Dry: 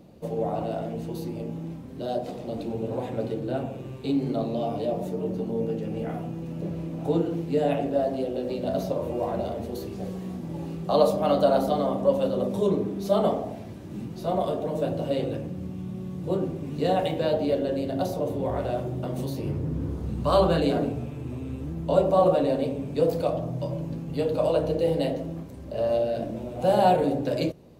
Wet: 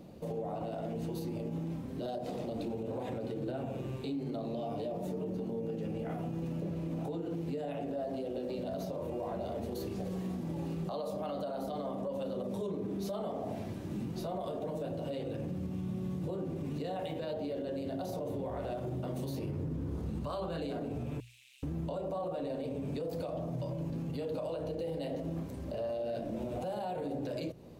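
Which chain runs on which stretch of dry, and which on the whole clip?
0:21.20–0:21.63: Butterworth high-pass 2,500 Hz + log-companded quantiser 8 bits + highs frequency-modulated by the lows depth 0.33 ms
whole clip: mains-hum notches 60/120 Hz; downward compressor 3 to 1, threshold −31 dBFS; brickwall limiter −29.5 dBFS

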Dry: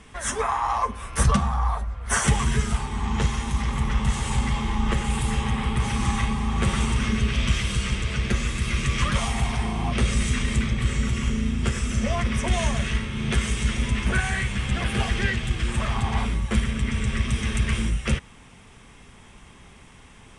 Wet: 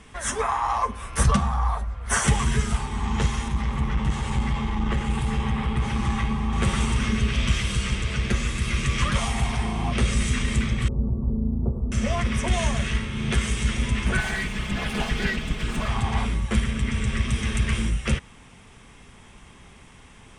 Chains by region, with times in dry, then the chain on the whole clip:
0:03.48–0:06.53: low-pass filter 3,200 Hz 6 dB per octave + double-tracking delay 14 ms −13 dB + saturating transformer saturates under 110 Hz
0:10.88–0:11.92: inverse Chebyshev band-stop filter 1,700–6,400 Hz, stop band 50 dB + high-frequency loss of the air 240 metres
0:14.17–0:15.88: lower of the sound and its delayed copy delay 4.7 ms + high-shelf EQ 7,200 Hz −5.5 dB
whole clip: no processing

